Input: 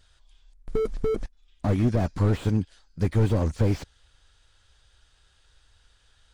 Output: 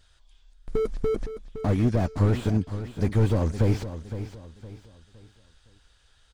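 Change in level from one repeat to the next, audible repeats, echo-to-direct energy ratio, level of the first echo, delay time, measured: −9.0 dB, 3, −11.0 dB, −11.5 dB, 513 ms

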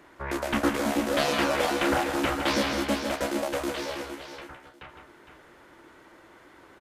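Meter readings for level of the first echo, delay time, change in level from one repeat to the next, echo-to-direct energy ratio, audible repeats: −7.5 dB, 161 ms, repeats not evenly spaced, −5.0 dB, 3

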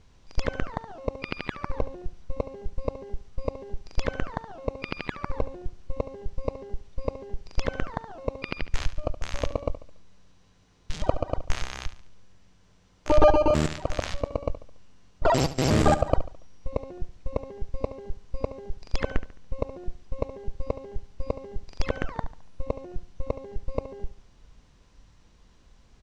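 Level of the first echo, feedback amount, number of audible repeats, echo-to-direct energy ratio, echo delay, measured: −14.0 dB, 41%, 3, −13.0 dB, 71 ms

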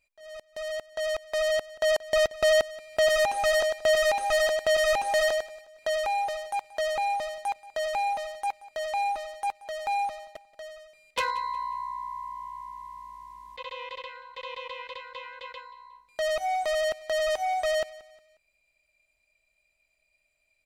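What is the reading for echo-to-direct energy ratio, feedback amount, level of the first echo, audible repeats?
−19.0 dB, 37%, −19.5 dB, 2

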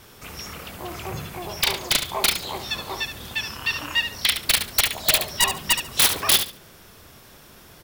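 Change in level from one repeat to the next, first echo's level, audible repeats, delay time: −13.5 dB, −9.0 dB, 2, 71 ms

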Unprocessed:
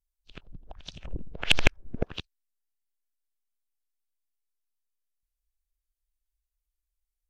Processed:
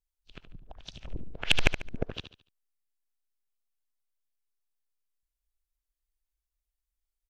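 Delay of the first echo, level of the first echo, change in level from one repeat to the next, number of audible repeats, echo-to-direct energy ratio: 72 ms, −10.0 dB, −9.0 dB, 3, −9.5 dB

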